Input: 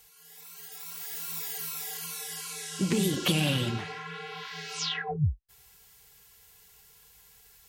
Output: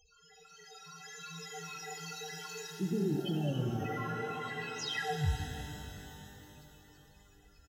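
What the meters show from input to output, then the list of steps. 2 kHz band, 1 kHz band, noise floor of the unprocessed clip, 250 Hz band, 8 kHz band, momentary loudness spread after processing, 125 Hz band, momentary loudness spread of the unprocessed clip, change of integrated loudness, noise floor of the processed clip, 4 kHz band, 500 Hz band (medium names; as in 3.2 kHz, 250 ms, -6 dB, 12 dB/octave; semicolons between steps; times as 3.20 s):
-4.5 dB, -1.0 dB, -58 dBFS, -4.5 dB, -10.5 dB, 19 LU, -4.5 dB, 16 LU, -6.0 dB, -62 dBFS, -9.0 dB, -2.5 dB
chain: comb 1.6 ms, depth 39%; resampled via 16 kHz; reverse; compression, threshold -35 dBFS, peak gain reduction 14.5 dB; reverse; small resonant body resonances 330/1500 Hz, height 7 dB, ringing for 25 ms; loudest bins only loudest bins 8; pitch-shifted reverb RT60 3.5 s, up +12 st, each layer -8 dB, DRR 4 dB; trim +3.5 dB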